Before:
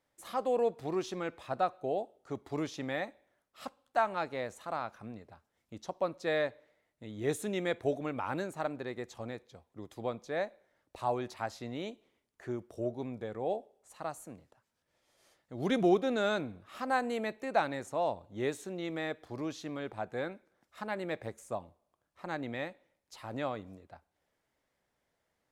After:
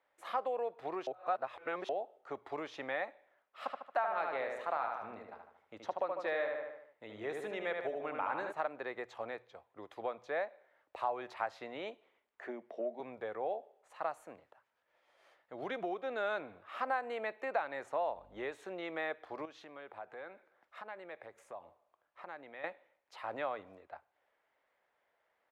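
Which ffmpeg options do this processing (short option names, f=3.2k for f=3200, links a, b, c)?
-filter_complex "[0:a]asplit=3[a][b][c];[a]afade=t=out:st=3.65:d=0.02[d];[b]asplit=2[e][f];[f]adelay=75,lowpass=f=3.9k:p=1,volume=-4.5dB,asplit=2[g][h];[h]adelay=75,lowpass=f=3.9k:p=1,volume=0.5,asplit=2[i][j];[j]adelay=75,lowpass=f=3.9k:p=1,volume=0.5,asplit=2[k][l];[l]adelay=75,lowpass=f=3.9k:p=1,volume=0.5,asplit=2[m][n];[n]adelay=75,lowpass=f=3.9k:p=1,volume=0.5,asplit=2[o][p];[p]adelay=75,lowpass=f=3.9k:p=1,volume=0.5[q];[e][g][i][k][m][o][q]amix=inputs=7:normalize=0,afade=t=in:st=3.65:d=0.02,afade=t=out:st=8.51:d=0.02[r];[c]afade=t=in:st=8.51:d=0.02[s];[d][r][s]amix=inputs=3:normalize=0,asettb=1/sr,asplit=3[t][u][v];[t]atrim=end=12.474[w];[u]atrim=start=12.47:end=13,asetpts=PTS-STARTPTS,afade=t=in:d=0.004:c=qsin,afade=t=out:st=0.526:d=0.004:c=qsin,highpass=f=190:w=0.5412,highpass=f=190:w=1.3066,equalizer=f=230:t=q:w=4:g=10,equalizer=f=660:t=q:w=4:g=6,equalizer=f=1.3k:t=q:w=4:g=-9,equalizer=f=2k:t=q:w=4:g=7,lowpass=f=5.8k:w=0.5412,lowpass=f=5.8k:w=1.3066[x];[v]atrim=start=12.996[y];[w][x]acrossfade=d=0.004:c1=hsin:c2=qsin[z];[z][y]acrossfade=d=0.004:c1=qsin:c2=hsin,asettb=1/sr,asplit=3[aa][ab][ac];[aa]atrim=end=18.014[ad];[ab]atrim=start=18.01:end=18.52,asetpts=PTS-STARTPTS,afade=t=in:d=0.004:c=qsin,afade=t=out:st=0.506:d=0.004:c=qsin,aeval=exprs='val(0)+0.00355*(sin(2*PI*50*n/s)+sin(2*PI*2*50*n/s)/2+sin(2*PI*3*50*n/s)/3+sin(2*PI*4*50*n/s)/4+sin(2*PI*5*50*n/s)/5)':c=same[ae];[ac]atrim=start=18.516[af];[ad][ae]acrossfade=d=0.004:c1=hsin:c2=qsin[ag];[ag][af]acrossfade=d=0.004:c1=qsin:c2=hsin,asettb=1/sr,asplit=3[ah][ai][aj];[ah]atrim=end=19.454[ak];[ai]atrim=start=19.45:end=22.64,asetpts=PTS-STARTPTS,afade=t=in:d=0.004:c=qsin,afade=t=out:st=3.186:d=0.004:c=qsin,acompressor=threshold=-49dB:ratio=3:attack=3.2:release=140:knee=1:detection=peak[al];[aj]atrim=start=22.636[am];[ak][al]acrossfade=d=0.004:c1=hsin:c2=qsin[an];[an][am]acrossfade=d=0.004:c1=qsin:c2=hsin,asplit=3[ao][ap][aq];[ao]atrim=end=1.072[ar];[ap]atrim=start=1.068:end=1.892,asetpts=PTS-STARTPTS,areverse[as];[aq]atrim=start=1.888[at];[ar][as]acrossfade=d=0.004:c1=hsin:c2=hsin[au];[au][at]acrossfade=d=0.004:c1=hsin:c2=hsin,acompressor=threshold=-35dB:ratio=5,acrossover=split=460 3000:gain=0.1 1 0.1[av][aw][ax];[av][aw][ax]amix=inputs=3:normalize=0,bandreject=f=60:t=h:w=6,bandreject=f=120:t=h:w=6,volume=5.5dB"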